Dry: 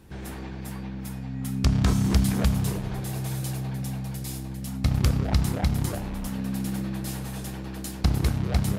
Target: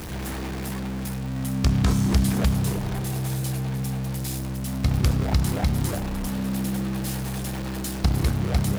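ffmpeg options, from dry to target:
-af "aeval=exprs='val(0)+0.5*0.0316*sgn(val(0))':c=same"

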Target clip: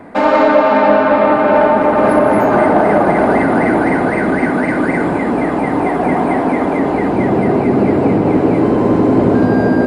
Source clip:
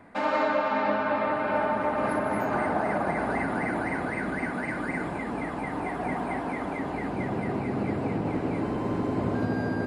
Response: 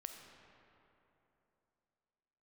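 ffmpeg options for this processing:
-filter_complex "[0:a]equalizer=f=400:w=0.57:g=8,asplit=2[a][b];[1:a]atrim=start_sample=2205[c];[b][c]afir=irnorm=-1:irlink=0,volume=4.5dB[d];[a][d]amix=inputs=2:normalize=0,acontrast=31"

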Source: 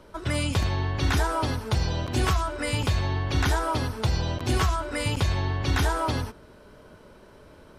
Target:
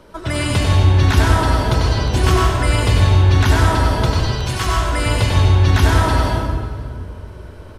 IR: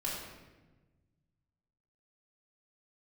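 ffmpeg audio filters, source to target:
-filter_complex "[0:a]asettb=1/sr,asplit=3[a][b][c];[a]atrim=end=4.104[d];[b]atrim=start=4.1:end=4.67,asetpts=PTS-STARTPTS,afade=t=in:d=0.004:c=qsin,afade=t=out:st=0.566:d=0.004:c=qsin,highpass=f=1.1k:p=1[e];[c]atrim=start=4.666[f];[d][e]acrossfade=d=0.004:c1=hsin:c2=qsin[g];[g][f]acrossfade=d=0.004:c1=qsin:c2=hsin,aecho=1:1:540:0.0668,asplit=2[h][i];[1:a]atrim=start_sample=2205,asetrate=27783,aresample=44100,adelay=95[j];[i][j]afir=irnorm=-1:irlink=0,volume=-5dB[k];[h][k]amix=inputs=2:normalize=0,volume=5dB"

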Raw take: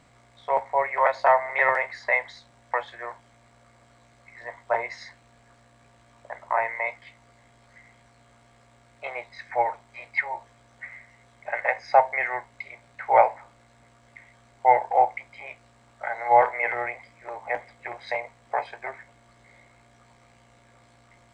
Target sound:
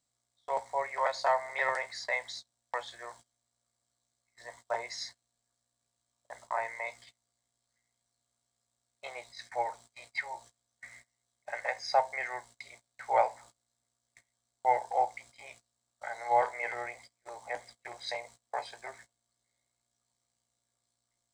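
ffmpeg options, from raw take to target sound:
-af "agate=range=-22dB:threshold=-45dB:ratio=16:detection=peak,aexciter=amount=5.3:drive=7.3:freq=3.6k,volume=-9dB"

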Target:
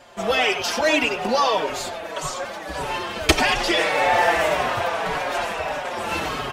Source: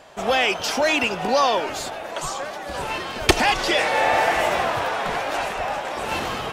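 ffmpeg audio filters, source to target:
-filter_complex "[0:a]bandreject=f=790:w=21,asplit=2[a][b];[b]adelay=90,highpass=300,lowpass=3.4k,asoftclip=type=hard:threshold=-10dB,volume=-8dB[c];[a][c]amix=inputs=2:normalize=0,asplit=2[d][e];[e]adelay=5.1,afreqshift=-1.7[f];[d][f]amix=inputs=2:normalize=1,volume=3dB"

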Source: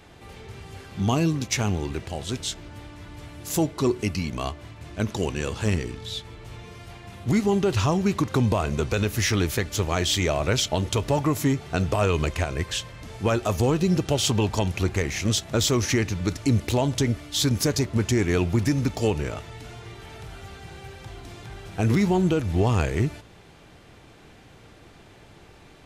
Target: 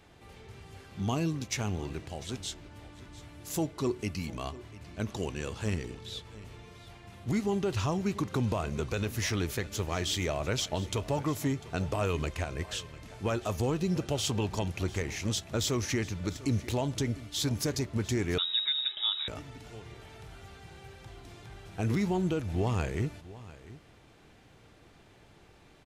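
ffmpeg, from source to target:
-filter_complex "[0:a]asplit=2[a][b];[b]aecho=0:1:698:0.126[c];[a][c]amix=inputs=2:normalize=0,asettb=1/sr,asplit=3[d][e][f];[d]atrim=end=18.384[g];[e]atrim=start=18.38:end=19.28,asetpts=PTS-STARTPTS,afade=t=in:d=0.004:c=qsin,afade=t=out:st=0.896:d=0.004:c=qsin,lowpass=f=3.3k:t=q:w=0.5098,lowpass=f=3.3k:t=q:w=0.6013,lowpass=f=3.3k:t=q:w=0.9,lowpass=f=3.3k:t=q:w=2.563,afreqshift=-3900[h];[f]atrim=start=19.276[i];[g][h]acrossfade=d=0.004:c1=hsin:c2=qsin[j];[j][i]acrossfade=d=0.004:c1=qsin:c2=hsin,volume=-8dB"

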